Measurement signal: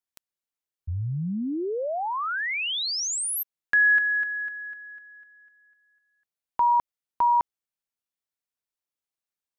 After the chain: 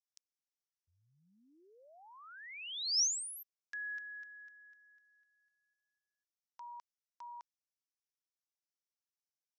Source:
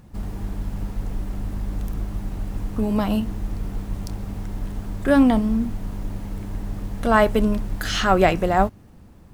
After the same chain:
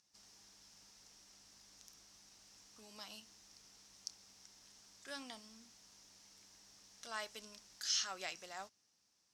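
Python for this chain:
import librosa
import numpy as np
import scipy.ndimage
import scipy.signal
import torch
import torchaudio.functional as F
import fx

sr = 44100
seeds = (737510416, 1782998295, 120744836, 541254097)

y = fx.bandpass_q(x, sr, hz=5600.0, q=4.3)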